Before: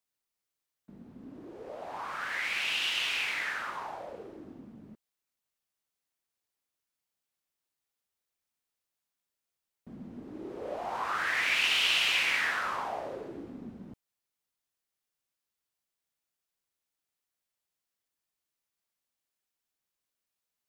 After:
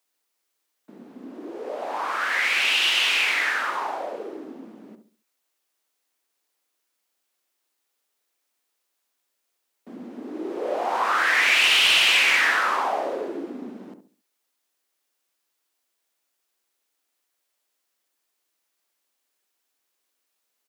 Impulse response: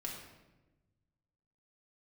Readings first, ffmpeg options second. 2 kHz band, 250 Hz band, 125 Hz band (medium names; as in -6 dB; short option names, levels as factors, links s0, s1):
+9.5 dB, +8.5 dB, no reading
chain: -filter_complex "[0:a]highpass=f=260:w=0.5412,highpass=f=260:w=1.3066,asplit=2[s0][s1];[s1]adelay=68,lowpass=f=820:p=1,volume=0.473,asplit=2[s2][s3];[s3]adelay=68,lowpass=f=820:p=1,volume=0.37,asplit=2[s4][s5];[s5]adelay=68,lowpass=f=820:p=1,volume=0.37,asplit=2[s6][s7];[s7]adelay=68,lowpass=f=820:p=1,volume=0.37[s8];[s0][s2][s4][s6][s8]amix=inputs=5:normalize=0,aeval=exprs='0.211*sin(PI/2*1.78*val(0)/0.211)':c=same,volume=1.19"